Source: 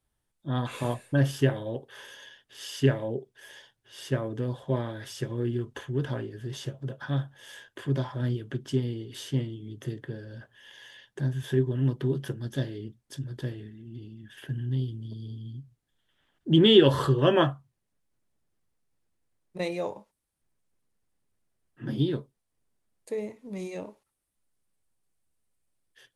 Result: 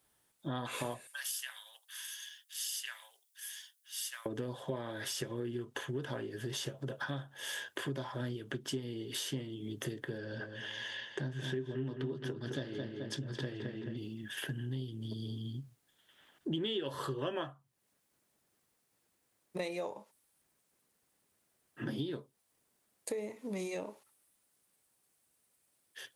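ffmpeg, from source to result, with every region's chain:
ffmpeg -i in.wav -filter_complex "[0:a]asettb=1/sr,asplit=3[link_01][link_02][link_03];[link_01]atrim=end=1.074[link_04];[link_02]atrim=start=1.07:end=4.26,asetpts=PTS-STARTPTS,afade=type=in:duration=0.004:curve=qsin,afade=type=out:start_time=3.186:duration=0.004:curve=qsin,highpass=frequency=1000:width=0.5412,highpass=frequency=1000:width=1.3066,aderivative[link_05];[link_03]atrim=start=4.256[link_06];[link_04][link_05]acrossfade=duration=0.004:curve1=hsin:curve2=qsin[link_07];[link_07][link_06]acrossfade=duration=0.004:curve1=qsin:curve2=hsin,asettb=1/sr,asplit=3[link_08][link_09][link_10];[link_08]atrim=end=10.184[link_11];[link_09]atrim=start=10.18:end=13.97,asetpts=PTS-STARTPTS,afade=type=in:duration=0.004:curve=qsin,afade=type=out:start_time=3.786:duration=0.004:curve=qsin,lowpass=5300,asplit=2[link_12][link_13];[link_13]adelay=215,lowpass=frequency=3500:poles=1,volume=-7dB,asplit=2[link_14][link_15];[link_15]adelay=215,lowpass=frequency=3500:poles=1,volume=0.39,asplit=2[link_16][link_17];[link_17]adelay=215,lowpass=frequency=3500:poles=1,volume=0.39,asplit=2[link_18][link_19];[link_19]adelay=215,lowpass=frequency=3500:poles=1,volume=0.39,asplit=2[link_20][link_21];[link_21]adelay=215,lowpass=frequency=3500:poles=1,volume=0.39[link_22];[link_12][link_14][link_16][link_18][link_20][link_22]amix=inputs=6:normalize=0,atrim=end_sample=167139[link_23];[link_10]atrim=start=13.966[link_24];[link_11][link_23]acrossfade=duration=0.004:curve1=hsin:curve2=qsin[link_25];[link_25][link_24]acrossfade=duration=0.004:curve1=qsin:curve2=hsin,highpass=frequency=330:poles=1,highshelf=frequency=9600:gain=6.5,acompressor=threshold=-44dB:ratio=6,volume=8dB" out.wav

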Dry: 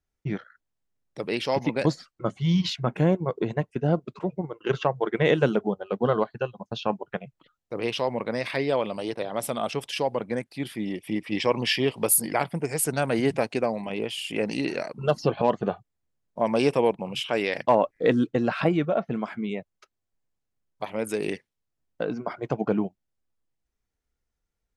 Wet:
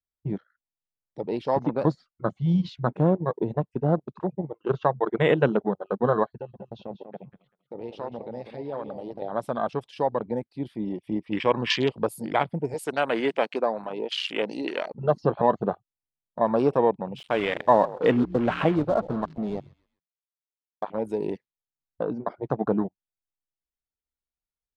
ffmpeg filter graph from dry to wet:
ffmpeg -i in.wav -filter_complex "[0:a]asettb=1/sr,asplit=3[link_01][link_02][link_03];[link_01]atrim=end=6.294[link_04];[link_02]atrim=start=6.29:end=9.22,asetpts=PTS-STARTPTS,afade=type=in:duration=0.004:curve=qsin,afade=type=out:start_time=2.926:duration=0.004:curve=qsin,acompressor=threshold=-37dB:ratio=2:attack=3.2:release=140:knee=1:detection=peak,asplit=2[link_05][link_06];[link_06]adelay=193,lowpass=frequency=3500:poles=1,volume=-8dB,asplit=2[link_07][link_08];[link_08]adelay=193,lowpass=frequency=3500:poles=1,volume=0.22,asplit=2[link_09][link_10];[link_10]adelay=193,lowpass=frequency=3500:poles=1,volume=0.22[link_11];[link_05][link_07][link_09][link_11]amix=inputs=4:normalize=0,atrim=end_sample=129213[link_12];[link_03]atrim=start=9.216[link_13];[link_04][link_12]acrossfade=duration=0.004:curve1=hsin:curve2=qsin[link_14];[link_14][link_13]acrossfade=duration=0.004:curve1=qsin:curve2=hsin,asettb=1/sr,asplit=3[link_15][link_16][link_17];[link_15]atrim=end=12.744[link_18];[link_16]atrim=start=12.74:end=14.91,asetpts=PTS-STARTPTS,afade=type=in:duration=0.004:curve=qsin,afade=type=out:start_time=2.166:duration=0.004:curve=qsin,highpass=300,highshelf=frequency=2600:gain=7[link_19];[link_17]atrim=start=14.906[link_20];[link_18][link_19]acrossfade=duration=0.004:curve1=hsin:curve2=qsin[link_21];[link_21][link_20]acrossfade=duration=0.004:curve1=qsin:curve2=hsin,asettb=1/sr,asplit=3[link_22][link_23][link_24];[link_22]atrim=end=17.184[link_25];[link_23]atrim=start=17.18:end=20.83,asetpts=PTS-STARTPTS,afade=type=in:duration=0.004:curve=qsin,afade=type=out:start_time=3.646:duration=0.004:curve=qsin,acrusher=bits=4:mix=0:aa=0.5,asplit=4[link_26][link_27][link_28][link_29];[link_27]adelay=130,afreqshift=-60,volume=-17dB[link_30];[link_28]adelay=260,afreqshift=-120,volume=-25.9dB[link_31];[link_29]adelay=390,afreqshift=-180,volume=-34.7dB[link_32];[link_26][link_30][link_31][link_32]amix=inputs=4:normalize=0,atrim=end_sample=160965[link_33];[link_24]atrim=start=20.826[link_34];[link_25][link_33]acrossfade=duration=0.004:curve1=hsin:curve2=qsin[link_35];[link_35][link_34]acrossfade=duration=0.004:curve1=qsin:curve2=hsin,highshelf=frequency=3600:gain=-11,afwtdn=0.0224,equalizer=frequency=1000:width_type=o:width=1:gain=4,equalizer=frequency=4000:width_type=o:width=1:gain=9,equalizer=frequency=8000:width_type=o:width=1:gain=3" out.wav

